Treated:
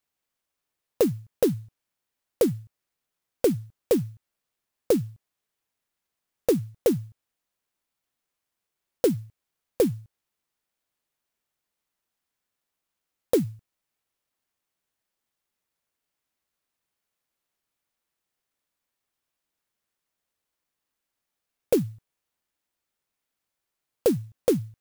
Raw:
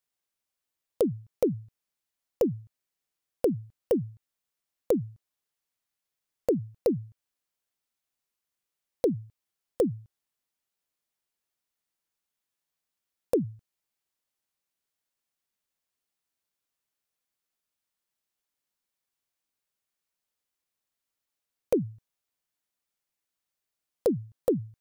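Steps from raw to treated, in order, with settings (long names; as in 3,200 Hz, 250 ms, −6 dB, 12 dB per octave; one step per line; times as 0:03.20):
converter with an unsteady clock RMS 0.056 ms
level +3.5 dB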